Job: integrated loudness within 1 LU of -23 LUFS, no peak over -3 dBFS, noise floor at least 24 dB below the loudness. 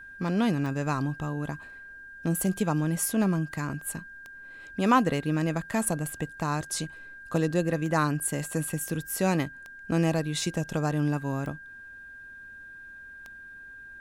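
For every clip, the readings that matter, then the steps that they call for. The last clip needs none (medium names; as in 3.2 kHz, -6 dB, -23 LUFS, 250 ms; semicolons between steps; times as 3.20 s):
clicks found 8; steady tone 1.6 kHz; tone level -43 dBFS; loudness -28.5 LUFS; peak level -8.5 dBFS; loudness target -23.0 LUFS
-> de-click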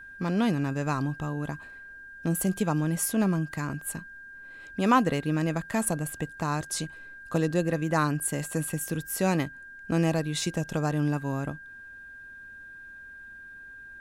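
clicks found 0; steady tone 1.6 kHz; tone level -43 dBFS
-> band-stop 1.6 kHz, Q 30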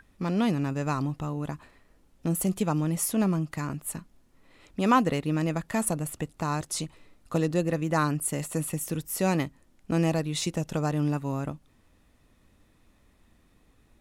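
steady tone not found; loudness -28.5 LUFS; peak level -9.0 dBFS; loudness target -23.0 LUFS
-> trim +5.5 dB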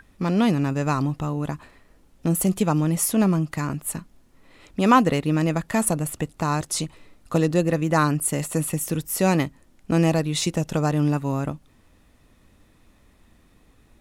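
loudness -23.0 LUFS; peak level -3.5 dBFS; noise floor -58 dBFS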